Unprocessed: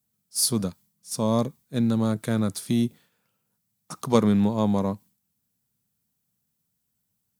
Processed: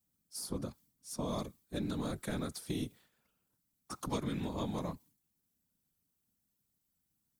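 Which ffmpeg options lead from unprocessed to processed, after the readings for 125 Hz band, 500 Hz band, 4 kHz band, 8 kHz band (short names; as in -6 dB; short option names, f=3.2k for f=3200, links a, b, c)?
-13.5 dB, -14.0 dB, -12.5 dB, -16.0 dB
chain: -filter_complex "[0:a]afftfilt=real='hypot(re,im)*cos(2*PI*random(0))':imag='hypot(re,im)*sin(2*PI*random(1))':win_size=512:overlap=0.75,acrossover=split=280|1500[a][b][c];[a]acompressor=threshold=-41dB:ratio=4[d];[b]acompressor=threshold=-41dB:ratio=4[e];[c]acompressor=threshold=-45dB:ratio=4[f];[d][e][f]amix=inputs=3:normalize=0,volume=1dB"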